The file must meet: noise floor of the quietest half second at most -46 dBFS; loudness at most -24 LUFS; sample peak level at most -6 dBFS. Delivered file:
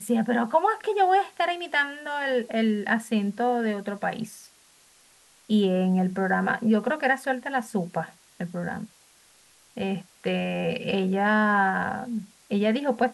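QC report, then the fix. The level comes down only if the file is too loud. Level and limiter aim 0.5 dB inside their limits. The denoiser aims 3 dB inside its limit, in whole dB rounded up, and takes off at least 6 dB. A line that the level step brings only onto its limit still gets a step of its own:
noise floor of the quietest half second -58 dBFS: OK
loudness -25.5 LUFS: OK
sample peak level -9.5 dBFS: OK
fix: none

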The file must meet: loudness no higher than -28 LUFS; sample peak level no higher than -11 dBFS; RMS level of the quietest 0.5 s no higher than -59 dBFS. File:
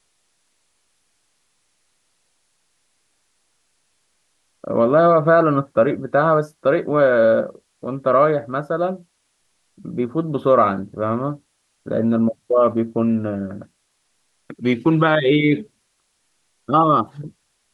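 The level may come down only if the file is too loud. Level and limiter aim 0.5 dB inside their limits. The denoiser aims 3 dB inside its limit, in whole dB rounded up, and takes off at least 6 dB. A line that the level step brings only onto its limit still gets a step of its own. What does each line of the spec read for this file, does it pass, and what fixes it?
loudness -18.5 LUFS: fail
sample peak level -3.5 dBFS: fail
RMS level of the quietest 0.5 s -68 dBFS: OK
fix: gain -10 dB

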